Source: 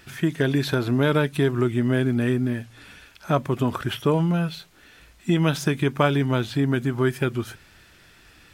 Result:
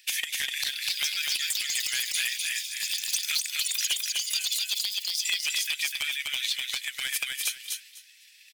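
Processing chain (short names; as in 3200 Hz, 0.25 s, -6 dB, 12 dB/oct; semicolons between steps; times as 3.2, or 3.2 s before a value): bin magnitudes rounded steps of 15 dB; steep high-pass 2000 Hz 48 dB/oct; high shelf 2900 Hz +6.5 dB; gate -50 dBFS, range -12 dB; transient shaper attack +9 dB, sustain -3 dB; echoes that change speed 0.593 s, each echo +6 st, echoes 3; compressor 12:1, threshold -32 dBFS, peak gain reduction 17 dB; wavefolder -25 dBFS; feedback echo 0.25 s, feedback 17%, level -3.5 dB; core saturation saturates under 2900 Hz; gain +8 dB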